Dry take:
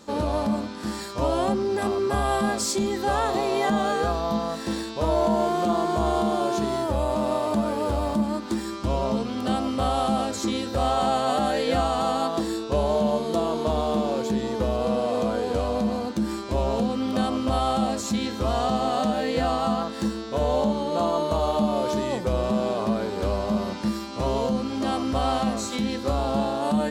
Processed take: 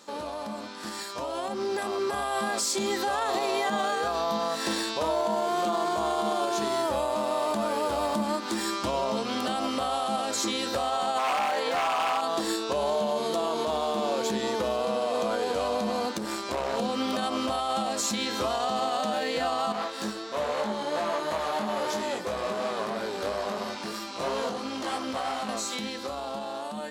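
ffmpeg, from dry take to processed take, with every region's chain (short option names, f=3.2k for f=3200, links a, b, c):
-filter_complex "[0:a]asettb=1/sr,asplit=3[a][b][c];[a]atrim=end=11.184[d];[b]atrim=start=11.18:end=12.21,asetpts=PTS-STARTPTS,afade=t=in:d=0.004:c=qsin,afade=t=out:st=1.026:d=0.004:c=qsin,equalizer=f=990:t=o:w=1.1:g=14.5,aeval=exprs='0.251*(abs(mod(val(0)/0.251+3,4)-2)-1)':c=same[e];[c]atrim=start=12.206[f];[d][e]acrossfade=d=0.004:c1=hsin:c2=qsin[g];[g][f]acrossfade=d=0.004:c1=qsin:c2=hsin,asettb=1/sr,asplit=3[h][i][j];[h]atrim=end=16.184[k];[i]atrim=start=16.18:end=16.78,asetpts=PTS-STARTPTS,afade=t=in:d=0.004:c=qsin,afade=t=out:st=0.596:d=0.004:c=qsin,aeval=exprs='(tanh(14.1*val(0)+0.75)-tanh(0.75))/14.1':c=same,acompressor=mode=upward:threshold=-31dB:ratio=2.5:attack=3.2:release=140:knee=2.83:detection=peak[l];[j]atrim=start=16.776[m];[k][l]acrossfade=d=0.004:c1=hsin:c2=qsin[n];[n][m]acrossfade=d=0.004:c1=qsin:c2=hsin,asettb=1/sr,asplit=3[o][p][q];[o]atrim=end=19.724[r];[p]atrim=start=19.72:end=25.49,asetpts=PTS-STARTPTS,afade=t=in:d=0.004:c=qsin,afade=t=out:st=5.766:d=0.004:c=qsin,aeval=exprs='(tanh(12.6*val(0)+0.6)-tanh(0.6))/12.6':c=same,flanger=delay=18.5:depth=2.4:speed=3[s];[q]atrim=start=25.486[t];[r][s]acrossfade=d=0.004:c1=hsin:c2=qsin[u];[u][t]acrossfade=d=0.004:c1=qsin:c2=hsin,highpass=f=760:p=1,alimiter=level_in=2dB:limit=-24dB:level=0:latency=1:release=119,volume=-2dB,dynaudnorm=f=330:g=11:m=7.5dB"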